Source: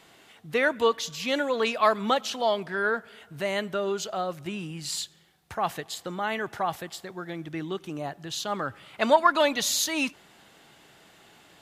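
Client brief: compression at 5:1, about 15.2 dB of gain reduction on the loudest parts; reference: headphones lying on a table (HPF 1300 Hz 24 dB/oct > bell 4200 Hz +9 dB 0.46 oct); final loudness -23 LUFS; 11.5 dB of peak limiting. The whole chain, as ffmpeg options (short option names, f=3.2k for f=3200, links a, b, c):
-af "acompressor=threshold=-31dB:ratio=5,alimiter=level_in=4.5dB:limit=-24dB:level=0:latency=1,volume=-4.5dB,highpass=f=1.3k:w=0.5412,highpass=f=1.3k:w=1.3066,equalizer=f=4.2k:t=o:w=0.46:g=9,volume=15.5dB"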